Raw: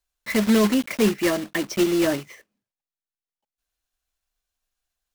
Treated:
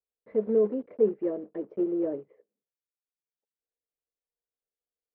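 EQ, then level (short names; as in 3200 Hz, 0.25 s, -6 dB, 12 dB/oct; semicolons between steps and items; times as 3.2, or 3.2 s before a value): band-pass 460 Hz, Q 5.5; air absorption 320 m; tilt -2.5 dB/oct; 0.0 dB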